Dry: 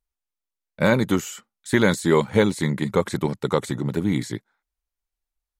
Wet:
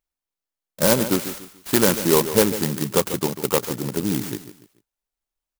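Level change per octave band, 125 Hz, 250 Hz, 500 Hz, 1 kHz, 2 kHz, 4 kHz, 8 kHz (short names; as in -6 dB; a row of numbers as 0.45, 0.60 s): -3.0, -1.0, +1.0, +0.5, -3.0, +5.0, +10.0 dB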